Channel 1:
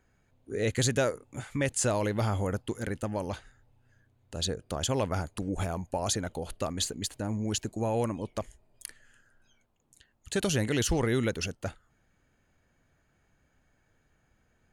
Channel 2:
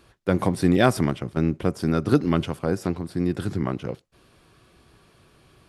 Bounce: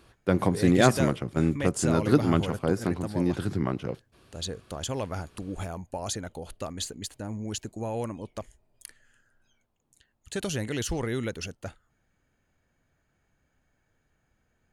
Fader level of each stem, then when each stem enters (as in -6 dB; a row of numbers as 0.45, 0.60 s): -3.0, -2.0 dB; 0.00, 0.00 s